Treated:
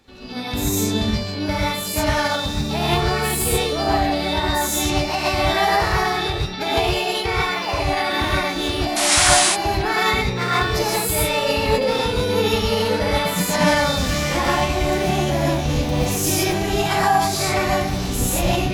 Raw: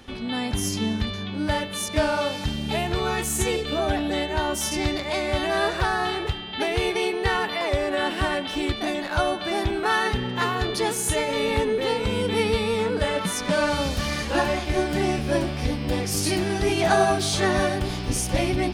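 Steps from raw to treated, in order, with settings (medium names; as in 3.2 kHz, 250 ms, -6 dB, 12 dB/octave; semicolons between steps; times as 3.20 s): level rider gain up to 11.5 dB; painted sound noise, 8.96–9.41 s, 670–10000 Hz -12 dBFS; gated-style reverb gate 170 ms rising, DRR -5 dB; formant shift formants +3 st; trim -10 dB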